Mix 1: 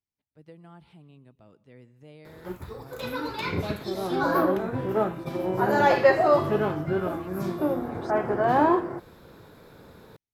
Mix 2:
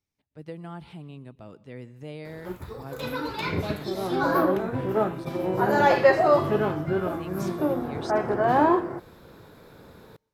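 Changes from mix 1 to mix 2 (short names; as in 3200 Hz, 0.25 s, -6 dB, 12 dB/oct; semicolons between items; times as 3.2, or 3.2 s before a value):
speech +10.0 dB; background: send on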